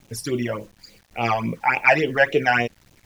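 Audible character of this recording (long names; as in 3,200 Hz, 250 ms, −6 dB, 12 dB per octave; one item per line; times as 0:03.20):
phaser sweep stages 12, 3.5 Hz, lowest notch 370–1,700 Hz
a quantiser's noise floor 10 bits, dither none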